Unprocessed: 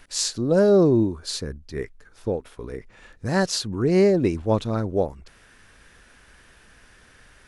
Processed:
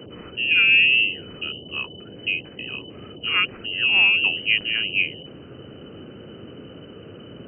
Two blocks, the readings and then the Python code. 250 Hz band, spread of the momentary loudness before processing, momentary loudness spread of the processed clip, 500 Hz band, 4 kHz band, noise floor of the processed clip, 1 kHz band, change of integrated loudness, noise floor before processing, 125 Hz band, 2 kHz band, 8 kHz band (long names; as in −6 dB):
−15.5 dB, 18 LU, 19 LU, −18.5 dB, +12.0 dB, −42 dBFS, −5.0 dB, +3.5 dB, −54 dBFS, −14.5 dB, +18.5 dB, below −40 dB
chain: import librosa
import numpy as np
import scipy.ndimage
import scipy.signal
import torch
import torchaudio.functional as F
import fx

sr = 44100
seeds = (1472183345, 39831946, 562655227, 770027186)

y = fx.freq_invert(x, sr, carrier_hz=3000)
y = fx.dmg_noise_band(y, sr, seeds[0], low_hz=79.0, high_hz=490.0, level_db=-41.0)